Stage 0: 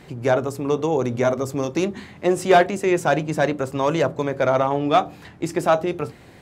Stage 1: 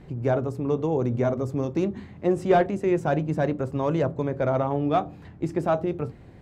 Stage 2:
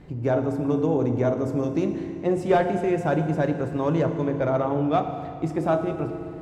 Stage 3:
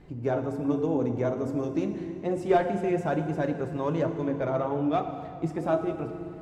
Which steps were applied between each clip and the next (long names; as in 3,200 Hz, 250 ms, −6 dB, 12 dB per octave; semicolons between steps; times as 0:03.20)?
spectral tilt −3 dB per octave; level −7.5 dB
feedback delay network reverb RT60 2.4 s, low-frequency decay 1.25×, high-frequency decay 0.85×, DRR 6 dB
flanger 1.2 Hz, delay 2.3 ms, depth 3.8 ms, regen +57%